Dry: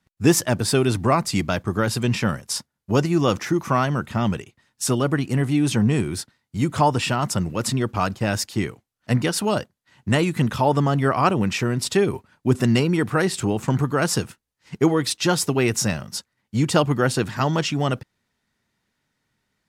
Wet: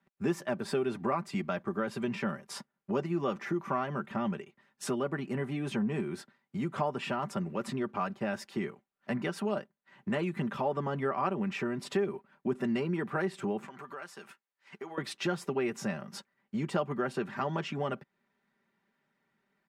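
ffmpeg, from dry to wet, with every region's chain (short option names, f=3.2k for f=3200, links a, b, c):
-filter_complex "[0:a]asettb=1/sr,asplit=3[a][b][c];[a]atrim=end=13.674[d];[b]atrim=start=13.67:end=14.98,asetpts=PTS-STARTPTS,afade=t=in:d=0.004:c=qsin,afade=t=out:st=1.306:d=0.004:c=qsin,highpass=f=1.2k:p=1,acompressor=threshold=-39dB:ratio=4:attack=3.2:release=140:knee=1:detection=peak[e];[c]atrim=start=14.976[f];[d][e]acrossfade=d=0.004:c1=hsin:c2=qsin[g];[g][f]acrossfade=d=0.004:c1=qsin:c2=hsin,acrossover=split=160 2700:gain=0.126 1 0.158[h][i][j];[h][i][j]amix=inputs=3:normalize=0,aecho=1:1:5.1:0.58,acompressor=threshold=-35dB:ratio=2,volume=-1.5dB"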